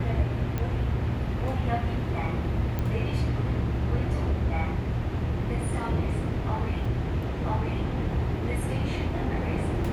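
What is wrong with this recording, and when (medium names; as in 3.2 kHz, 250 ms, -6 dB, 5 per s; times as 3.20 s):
0.58 s: pop -17 dBFS
2.79 s: pop -17 dBFS
6.85 s: dropout 3.8 ms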